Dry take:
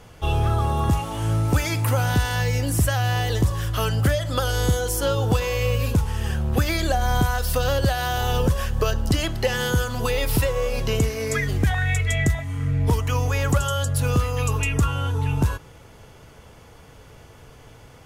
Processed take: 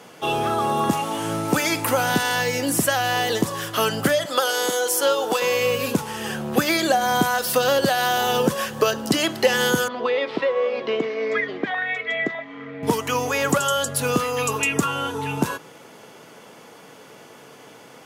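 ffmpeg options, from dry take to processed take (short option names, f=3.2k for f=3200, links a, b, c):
-filter_complex "[0:a]asettb=1/sr,asplit=3[a][b][c];[a]atrim=end=4.254[d];[b]atrim=start=4.25:end=5.42,asetpts=PTS-STARTPTS,afade=t=in:d=0.004:c=qsin,afade=t=out:st=1.166:d=0.004:c=qsin,highpass=410[e];[c]atrim=start=5.416[f];[d][e]acrossfade=d=0.004:c1=hsin:c2=qsin[g];[g][f]acrossfade=d=0.004:c1=qsin:c2=hsin,asettb=1/sr,asplit=3[h][i][j];[h]atrim=end=9.884[k];[i]atrim=start=9.88:end=12.83,asetpts=PTS-STARTPTS,afade=t=in:d=0.004:c=qsin,afade=t=out:st=2.946:d=0.004:c=qsin,highpass=330,equalizer=f=850:t=q:w=4:g=-5,equalizer=f=1.5k:t=q:w=4:g=-5,equalizer=f=2.7k:t=q:w=4:g=-7,lowpass=f=3.2k:w=0.5412,lowpass=f=3.2k:w=1.3066[l];[j]atrim=start=12.826[m];[k][l]acrossfade=d=0.004:c1=hsin:c2=qsin[n];[n][m]acrossfade=d=0.004:c1=qsin:c2=hsin,highpass=f=190:w=0.5412,highpass=f=190:w=1.3066,volume=5dB"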